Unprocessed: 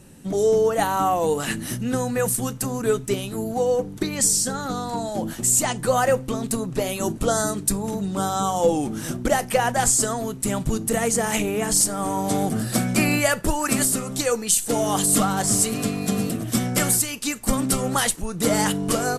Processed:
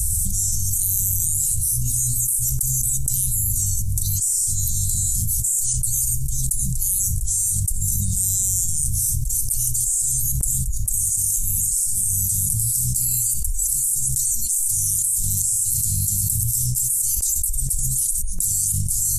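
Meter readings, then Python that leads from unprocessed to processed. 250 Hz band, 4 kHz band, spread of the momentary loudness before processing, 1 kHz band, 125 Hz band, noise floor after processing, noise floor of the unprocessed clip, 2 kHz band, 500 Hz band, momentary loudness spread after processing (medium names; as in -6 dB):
-15.5 dB, -7.5 dB, 7 LU, under -40 dB, +3.5 dB, -23 dBFS, -35 dBFS, under -35 dB, under -40 dB, 3 LU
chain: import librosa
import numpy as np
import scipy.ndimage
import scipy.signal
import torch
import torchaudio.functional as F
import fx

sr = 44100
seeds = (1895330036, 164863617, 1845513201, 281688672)

y = scipy.signal.sosfilt(scipy.signal.cheby2(4, 80, [360.0, 1700.0], 'bandstop', fs=sr, output='sos'), x)
y = fx.echo_filtered(y, sr, ms=62, feedback_pct=49, hz=3700.0, wet_db=-15)
y = fx.env_flatten(y, sr, amount_pct=100)
y = y * 10.0 ** (-2.5 / 20.0)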